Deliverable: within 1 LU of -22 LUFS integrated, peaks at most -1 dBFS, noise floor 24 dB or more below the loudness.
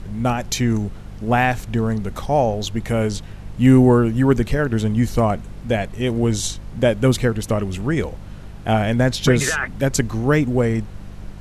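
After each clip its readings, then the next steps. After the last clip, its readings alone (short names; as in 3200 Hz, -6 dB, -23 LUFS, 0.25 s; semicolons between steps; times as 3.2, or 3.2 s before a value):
hum 50 Hz; harmonics up to 200 Hz; hum level -34 dBFS; noise floor -36 dBFS; noise floor target -44 dBFS; loudness -19.5 LUFS; peak -2.0 dBFS; loudness target -22.0 LUFS
-> de-hum 50 Hz, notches 4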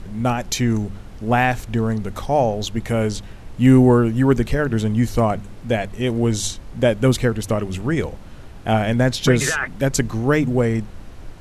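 hum none; noise floor -38 dBFS; noise floor target -44 dBFS
-> noise print and reduce 6 dB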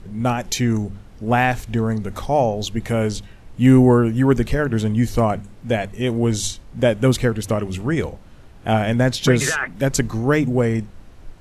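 noise floor -43 dBFS; noise floor target -44 dBFS
-> noise print and reduce 6 dB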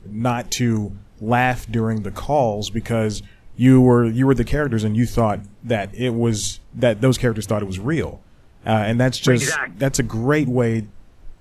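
noise floor -48 dBFS; loudness -19.5 LUFS; peak -2.5 dBFS; loudness target -22.0 LUFS
-> gain -2.5 dB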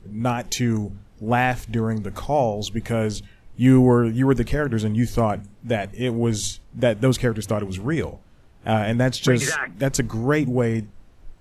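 loudness -22.0 LUFS; peak -5.0 dBFS; noise floor -51 dBFS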